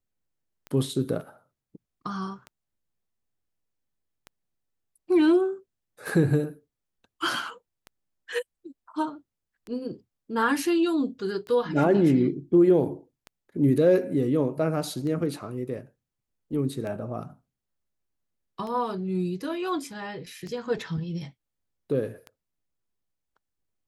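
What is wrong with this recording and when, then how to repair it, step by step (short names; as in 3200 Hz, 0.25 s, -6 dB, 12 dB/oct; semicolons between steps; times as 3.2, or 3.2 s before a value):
tick 33 1/3 rpm -25 dBFS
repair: de-click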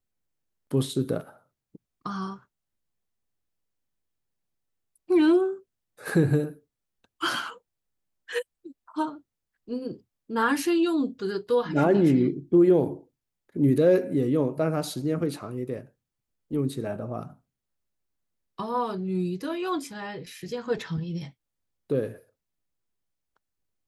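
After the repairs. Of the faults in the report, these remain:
none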